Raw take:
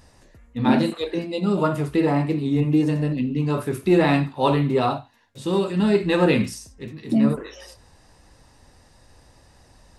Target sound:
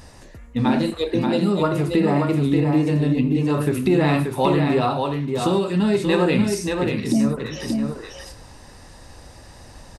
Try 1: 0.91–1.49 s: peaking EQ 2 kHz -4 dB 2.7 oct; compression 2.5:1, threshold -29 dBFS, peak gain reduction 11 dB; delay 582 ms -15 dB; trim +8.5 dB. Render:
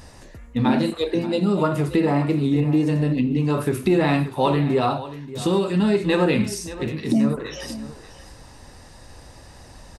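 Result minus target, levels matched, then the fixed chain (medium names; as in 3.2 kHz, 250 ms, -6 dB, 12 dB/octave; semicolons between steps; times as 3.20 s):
echo-to-direct -10.5 dB
0.91–1.49 s: peaking EQ 2 kHz -4 dB 2.7 oct; compression 2.5:1, threshold -29 dBFS, peak gain reduction 11 dB; delay 582 ms -4.5 dB; trim +8.5 dB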